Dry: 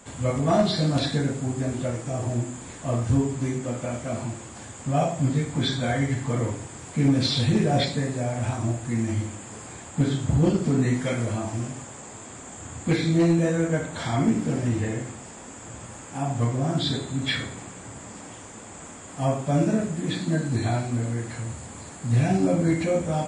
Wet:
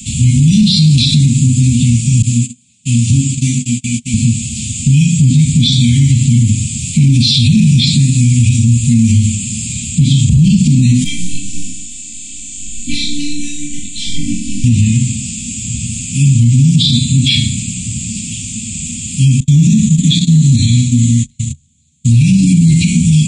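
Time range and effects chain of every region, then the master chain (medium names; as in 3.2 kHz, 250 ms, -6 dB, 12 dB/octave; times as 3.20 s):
2.22–4.14 s: high-pass 79 Hz 24 dB/octave + gate -32 dBFS, range -30 dB + bass shelf 200 Hz -10 dB
11.04–14.64 s: robot voice 292 Hz + detune thickener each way 22 cents
19.40–22.09 s: gate -31 dBFS, range -37 dB + rippled EQ curve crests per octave 1.1, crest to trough 8 dB
whole clip: Chebyshev band-stop 240–2500 Hz, order 5; loudness maximiser +24 dB; trim -1 dB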